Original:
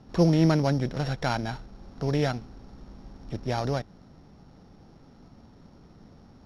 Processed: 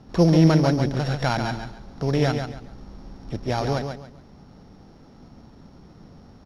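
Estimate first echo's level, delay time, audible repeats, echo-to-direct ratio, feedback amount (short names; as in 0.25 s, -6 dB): -6.5 dB, 0.139 s, 3, -6.0 dB, 27%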